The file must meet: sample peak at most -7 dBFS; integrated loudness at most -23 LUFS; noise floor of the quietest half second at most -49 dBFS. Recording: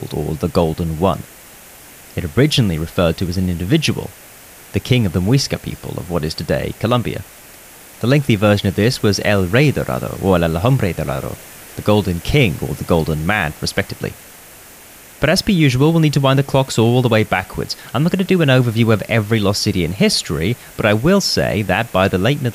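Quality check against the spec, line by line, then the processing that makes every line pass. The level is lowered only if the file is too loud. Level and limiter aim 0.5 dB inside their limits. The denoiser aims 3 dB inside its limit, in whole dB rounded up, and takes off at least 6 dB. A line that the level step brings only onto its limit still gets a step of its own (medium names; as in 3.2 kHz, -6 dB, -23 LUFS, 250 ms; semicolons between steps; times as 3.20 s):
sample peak -2.0 dBFS: fail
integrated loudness -16.5 LUFS: fail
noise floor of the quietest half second -40 dBFS: fail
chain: noise reduction 6 dB, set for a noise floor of -40 dBFS; trim -7 dB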